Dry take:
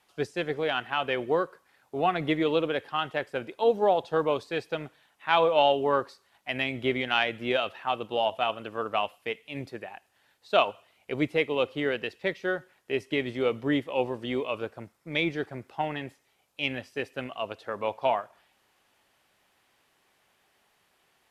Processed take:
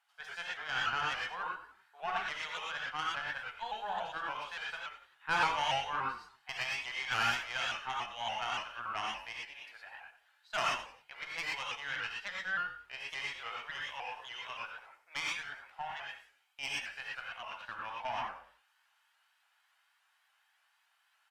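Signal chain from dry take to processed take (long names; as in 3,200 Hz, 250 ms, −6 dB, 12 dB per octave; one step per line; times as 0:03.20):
stylus tracing distortion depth 0.11 ms
high-pass filter 1,100 Hz 24 dB per octave
high-shelf EQ 2,300 Hz −12 dB
notch filter 2,300 Hz, Q 13
comb filter 1.3 ms, depth 34%
tube saturation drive 24 dB, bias 0.55
on a send: echo with shifted repeats 90 ms, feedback 34%, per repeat −51 Hz, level −12 dB
on the sum: reverb whose tail is shaped and stops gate 140 ms rising, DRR −3 dB
pitch modulation by a square or saw wave saw up 3.5 Hz, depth 100 cents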